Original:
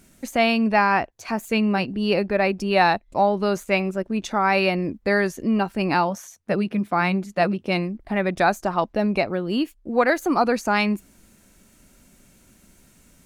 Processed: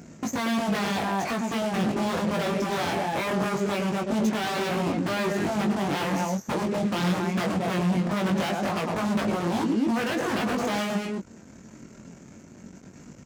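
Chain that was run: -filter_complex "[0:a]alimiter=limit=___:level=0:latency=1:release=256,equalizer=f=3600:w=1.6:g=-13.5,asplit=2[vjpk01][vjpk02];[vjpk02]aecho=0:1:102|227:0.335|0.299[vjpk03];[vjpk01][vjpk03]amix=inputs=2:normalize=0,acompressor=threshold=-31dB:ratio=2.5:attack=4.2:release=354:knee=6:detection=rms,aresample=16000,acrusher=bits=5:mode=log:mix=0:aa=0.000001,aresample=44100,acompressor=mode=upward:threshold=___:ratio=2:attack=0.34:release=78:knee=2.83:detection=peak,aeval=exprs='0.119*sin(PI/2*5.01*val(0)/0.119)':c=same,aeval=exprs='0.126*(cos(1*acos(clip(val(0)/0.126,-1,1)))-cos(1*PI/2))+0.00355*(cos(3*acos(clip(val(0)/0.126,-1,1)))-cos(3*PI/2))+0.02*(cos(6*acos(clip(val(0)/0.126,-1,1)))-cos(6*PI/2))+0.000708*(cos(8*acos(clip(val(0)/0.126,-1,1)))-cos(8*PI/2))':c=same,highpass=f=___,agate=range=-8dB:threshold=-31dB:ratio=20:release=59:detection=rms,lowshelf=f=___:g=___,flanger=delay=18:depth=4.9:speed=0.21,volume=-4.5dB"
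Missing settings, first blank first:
-12dB, -42dB, 130, 360, 9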